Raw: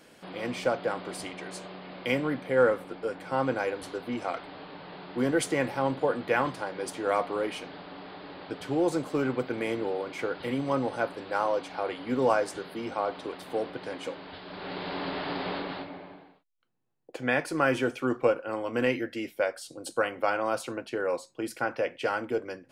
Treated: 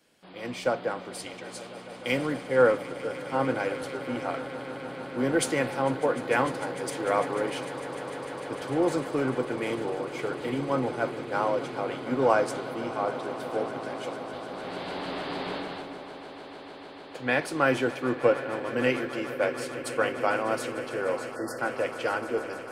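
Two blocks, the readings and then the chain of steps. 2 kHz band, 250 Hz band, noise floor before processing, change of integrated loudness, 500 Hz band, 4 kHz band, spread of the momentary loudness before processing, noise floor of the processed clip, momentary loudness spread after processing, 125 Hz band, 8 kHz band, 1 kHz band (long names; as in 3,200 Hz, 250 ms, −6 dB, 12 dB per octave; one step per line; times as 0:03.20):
+1.5 dB, +1.0 dB, −56 dBFS, +1.0 dB, +1.5 dB, +1.5 dB, 14 LU, −43 dBFS, 12 LU, +1.5 dB, +3.0 dB, +1.5 dB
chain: echo that builds up and dies away 150 ms, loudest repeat 8, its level −16 dB
time-frequency box erased 0:21.36–0:21.59, 2,000–4,200 Hz
multiband upward and downward expander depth 40%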